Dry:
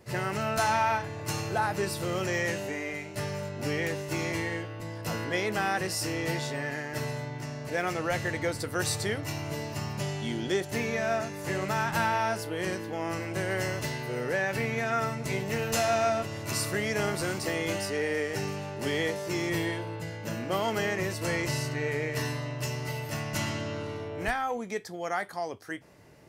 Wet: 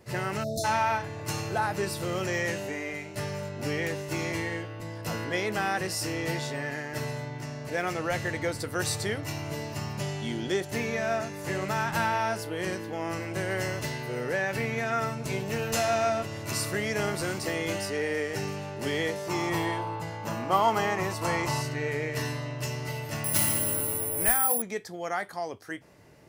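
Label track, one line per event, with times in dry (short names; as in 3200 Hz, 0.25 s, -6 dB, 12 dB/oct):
0.430000	0.640000	spectral delete 680–3500 Hz
15.120000	15.650000	notch 2000 Hz
19.280000	21.620000	band shelf 950 Hz +10 dB 1 oct
23.240000	24.620000	careless resampling rate divided by 4×, down none, up zero stuff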